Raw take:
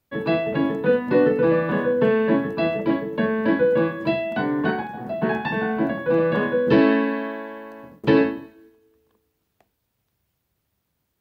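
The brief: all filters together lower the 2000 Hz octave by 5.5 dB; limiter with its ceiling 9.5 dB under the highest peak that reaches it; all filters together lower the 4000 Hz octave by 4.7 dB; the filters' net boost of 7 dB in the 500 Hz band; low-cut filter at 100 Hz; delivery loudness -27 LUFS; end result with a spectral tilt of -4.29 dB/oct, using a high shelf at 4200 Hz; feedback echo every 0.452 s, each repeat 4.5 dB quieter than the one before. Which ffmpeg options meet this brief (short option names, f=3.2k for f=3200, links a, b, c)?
-af "highpass=100,equalizer=f=500:t=o:g=8,equalizer=f=2k:t=o:g=-8,equalizer=f=4k:t=o:g=-5,highshelf=f=4.2k:g=4,alimiter=limit=-11dB:level=0:latency=1,aecho=1:1:452|904|1356|1808|2260|2712|3164|3616|4068:0.596|0.357|0.214|0.129|0.0772|0.0463|0.0278|0.0167|0.01,volume=-8.5dB"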